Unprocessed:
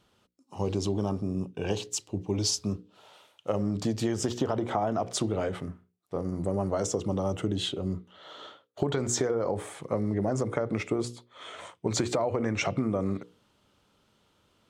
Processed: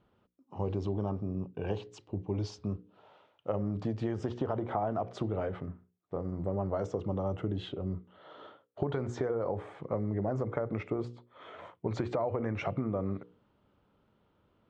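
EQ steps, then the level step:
dynamic equaliser 250 Hz, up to −5 dB, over −38 dBFS, Q 0.71
head-to-tape spacing loss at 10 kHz 28 dB
high-shelf EQ 3,900 Hz −9.5 dB
0.0 dB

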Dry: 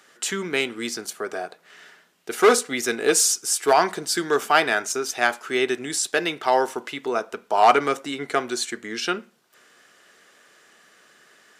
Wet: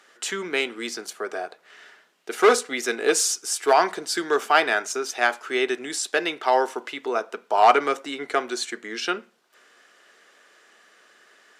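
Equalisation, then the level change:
high-pass filter 290 Hz 12 dB per octave
high-shelf EQ 8,500 Hz −9 dB
0.0 dB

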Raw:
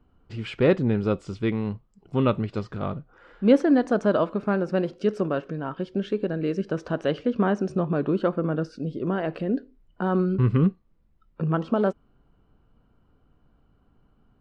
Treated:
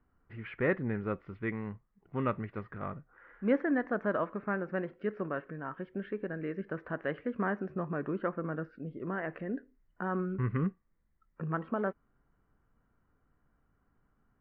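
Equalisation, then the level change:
transistor ladder low-pass 2,100 Hz, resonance 65%
parametric band 1,100 Hz +3 dB 0.44 octaves
0.0 dB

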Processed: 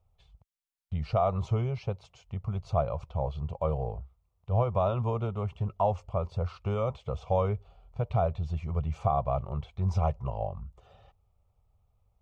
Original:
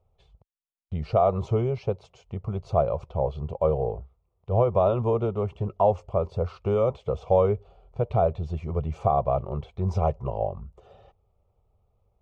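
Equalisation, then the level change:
parametric band 390 Hz −11 dB 1.6 octaves
0.0 dB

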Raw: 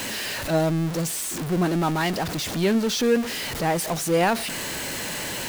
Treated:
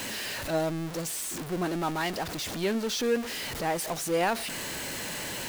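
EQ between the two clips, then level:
dynamic equaliser 160 Hz, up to −6 dB, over −36 dBFS, Q 1.1
−5.0 dB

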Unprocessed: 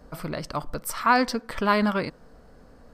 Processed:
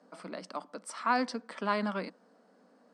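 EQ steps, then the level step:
Chebyshev high-pass with heavy ripple 180 Hz, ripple 3 dB
elliptic low-pass filter 9,200 Hz, stop band 50 dB
−6.5 dB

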